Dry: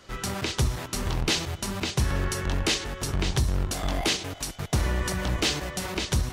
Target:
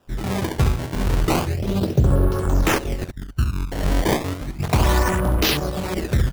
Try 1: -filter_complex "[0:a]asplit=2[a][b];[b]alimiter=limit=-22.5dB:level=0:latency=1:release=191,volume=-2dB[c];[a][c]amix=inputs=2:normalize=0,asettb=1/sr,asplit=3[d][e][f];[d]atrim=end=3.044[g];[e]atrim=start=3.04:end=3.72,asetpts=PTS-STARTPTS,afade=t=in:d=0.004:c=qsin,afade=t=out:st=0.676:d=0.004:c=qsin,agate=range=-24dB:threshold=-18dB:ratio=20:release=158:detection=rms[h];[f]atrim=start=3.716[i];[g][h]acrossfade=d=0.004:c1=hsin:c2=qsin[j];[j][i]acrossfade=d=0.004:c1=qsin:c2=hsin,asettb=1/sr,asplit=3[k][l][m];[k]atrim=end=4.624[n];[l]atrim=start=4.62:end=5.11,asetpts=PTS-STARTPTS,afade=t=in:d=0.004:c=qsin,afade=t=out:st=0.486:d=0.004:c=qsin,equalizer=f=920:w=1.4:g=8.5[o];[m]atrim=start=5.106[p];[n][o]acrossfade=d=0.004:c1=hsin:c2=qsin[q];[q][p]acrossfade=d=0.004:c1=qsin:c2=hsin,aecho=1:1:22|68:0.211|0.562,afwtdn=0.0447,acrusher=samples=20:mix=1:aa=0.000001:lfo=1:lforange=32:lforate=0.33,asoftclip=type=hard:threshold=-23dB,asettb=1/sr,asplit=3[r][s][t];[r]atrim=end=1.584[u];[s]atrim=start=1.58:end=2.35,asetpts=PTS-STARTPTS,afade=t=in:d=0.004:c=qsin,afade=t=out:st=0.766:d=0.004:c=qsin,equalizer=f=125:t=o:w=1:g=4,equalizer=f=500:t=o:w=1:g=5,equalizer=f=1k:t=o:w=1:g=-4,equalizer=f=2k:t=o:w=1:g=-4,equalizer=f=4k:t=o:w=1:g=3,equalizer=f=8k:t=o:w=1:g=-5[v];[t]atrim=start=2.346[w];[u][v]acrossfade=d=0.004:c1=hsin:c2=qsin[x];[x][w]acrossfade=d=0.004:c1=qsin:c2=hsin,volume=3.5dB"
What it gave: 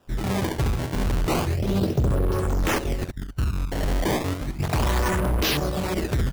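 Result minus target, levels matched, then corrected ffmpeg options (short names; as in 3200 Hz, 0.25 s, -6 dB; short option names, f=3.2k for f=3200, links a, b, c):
hard clip: distortion +33 dB
-filter_complex "[0:a]asplit=2[a][b];[b]alimiter=limit=-22.5dB:level=0:latency=1:release=191,volume=-2dB[c];[a][c]amix=inputs=2:normalize=0,asettb=1/sr,asplit=3[d][e][f];[d]atrim=end=3.044[g];[e]atrim=start=3.04:end=3.72,asetpts=PTS-STARTPTS,afade=t=in:d=0.004:c=qsin,afade=t=out:st=0.676:d=0.004:c=qsin,agate=range=-24dB:threshold=-18dB:ratio=20:release=158:detection=rms[h];[f]atrim=start=3.716[i];[g][h]acrossfade=d=0.004:c1=hsin:c2=qsin[j];[j][i]acrossfade=d=0.004:c1=qsin:c2=hsin,asettb=1/sr,asplit=3[k][l][m];[k]atrim=end=4.624[n];[l]atrim=start=4.62:end=5.11,asetpts=PTS-STARTPTS,afade=t=in:d=0.004:c=qsin,afade=t=out:st=0.486:d=0.004:c=qsin,equalizer=f=920:w=1.4:g=8.5[o];[m]atrim=start=5.106[p];[n][o]acrossfade=d=0.004:c1=hsin:c2=qsin[q];[q][p]acrossfade=d=0.004:c1=qsin:c2=hsin,aecho=1:1:22|68:0.211|0.562,afwtdn=0.0447,acrusher=samples=20:mix=1:aa=0.000001:lfo=1:lforange=32:lforate=0.33,asoftclip=type=hard:threshold=-11.5dB,asettb=1/sr,asplit=3[r][s][t];[r]atrim=end=1.584[u];[s]atrim=start=1.58:end=2.35,asetpts=PTS-STARTPTS,afade=t=in:d=0.004:c=qsin,afade=t=out:st=0.766:d=0.004:c=qsin,equalizer=f=125:t=o:w=1:g=4,equalizer=f=500:t=o:w=1:g=5,equalizer=f=1k:t=o:w=1:g=-4,equalizer=f=2k:t=o:w=1:g=-4,equalizer=f=4k:t=o:w=1:g=3,equalizer=f=8k:t=o:w=1:g=-5[v];[t]atrim=start=2.346[w];[u][v]acrossfade=d=0.004:c1=hsin:c2=qsin[x];[x][w]acrossfade=d=0.004:c1=qsin:c2=hsin,volume=3.5dB"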